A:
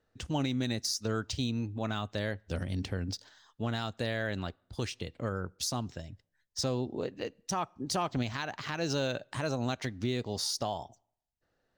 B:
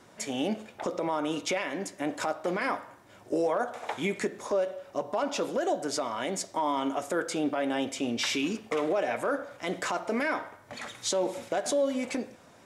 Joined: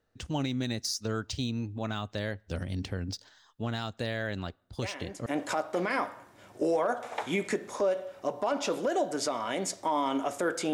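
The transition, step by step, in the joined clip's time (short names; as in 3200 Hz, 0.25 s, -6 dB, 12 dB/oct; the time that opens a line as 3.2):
A
4.82 add B from 1.53 s 0.44 s -8.5 dB
5.26 switch to B from 1.97 s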